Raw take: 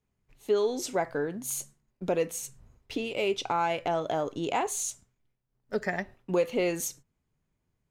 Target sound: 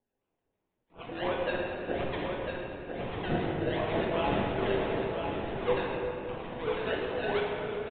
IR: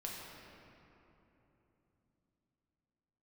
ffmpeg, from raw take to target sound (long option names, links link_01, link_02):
-filter_complex "[0:a]areverse,deesser=0.7,highpass=frequency=380:width=0.5412,highpass=frequency=380:width=1.3066,asplit=2[link_01][link_02];[link_02]acompressor=threshold=-39dB:ratio=5,volume=3dB[link_03];[link_01][link_03]amix=inputs=2:normalize=0,acrusher=samples=32:mix=1:aa=0.000001:lfo=1:lforange=19.2:lforate=2.8,acrossover=split=1300[link_04][link_05];[link_04]aeval=exprs='val(0)*(1-0.7/2+0.7/2*cos(2*PI*6.3*n/s))':channel_layout=same[link_06];[link_05]aeval=exprs='val(0)*(1-0.7/2-0.7/2*cos(2*PI*6.3*n/s))':channel_layout=same[link_07];[link_06][link_07]amix=inputs=2:normalize=0,aecho=1:1:1000:0.501[link_08];[1:a]atrim=start_sample=2205[link_09];[link_08][link_09]afir=irnorm=-1:irlink=0,aresample=8000,aresample=44100" -ar 48000 -c:a aac -b:a 32k